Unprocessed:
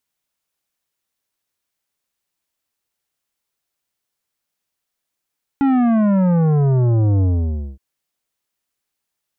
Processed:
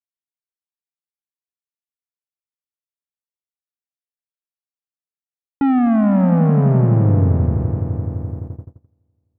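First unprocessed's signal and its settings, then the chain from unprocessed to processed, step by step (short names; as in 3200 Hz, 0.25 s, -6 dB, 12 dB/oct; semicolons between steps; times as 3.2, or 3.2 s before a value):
sub drop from 280 Hz, over 2.17 s, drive 11.5 dB, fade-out 0.56 s, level -13.5 dB
on a send: swelling echo 85 ms, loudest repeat 5, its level -14 dB; on the sum: gate -27 dBFS, range -29 dB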